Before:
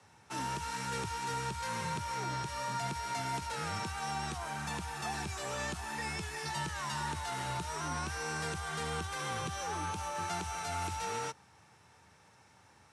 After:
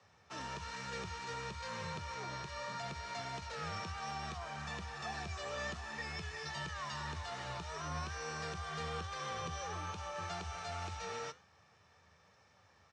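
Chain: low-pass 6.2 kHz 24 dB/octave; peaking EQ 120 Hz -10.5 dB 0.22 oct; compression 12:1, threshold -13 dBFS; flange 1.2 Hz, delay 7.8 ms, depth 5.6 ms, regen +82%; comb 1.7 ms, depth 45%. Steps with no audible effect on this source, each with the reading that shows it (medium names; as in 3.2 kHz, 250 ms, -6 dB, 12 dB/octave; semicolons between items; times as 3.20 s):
compression, threshold -13 dBFS: peak at its input -24.5 dBFS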